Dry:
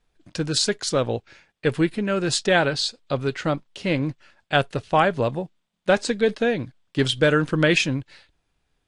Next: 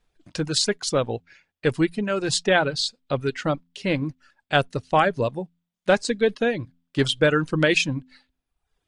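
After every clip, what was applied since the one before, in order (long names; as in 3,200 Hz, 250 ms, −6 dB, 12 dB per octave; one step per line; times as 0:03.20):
hum removal 85.77 Hz, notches 3
reverb reduction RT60 0.82 s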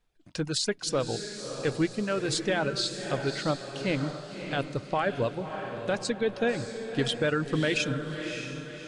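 brickwall limiter −13 dBFS, peak gain reduction 9.5 dB
on a send: feedback delay with all-pass diffusion 597 ms, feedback 45%, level −7.5 dB
on the sum: level −4.5 dB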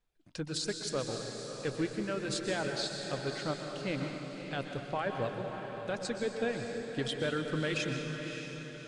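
dense smooth reverb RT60 1.9 s, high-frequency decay 0.9×, pre-delay 110 ms, DRR 5 dB
level −7 dB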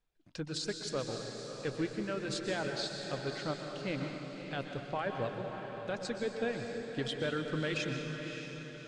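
low-pass filter 7,300 Hz 12 dB per octave
level −1.5 dB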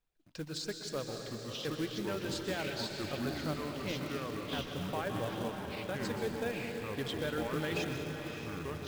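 delay with pitch and tempo change per echo 793 ms, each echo −5 semitones, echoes 2
floating-point word with a short mantissa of 2 bits
level −2 dB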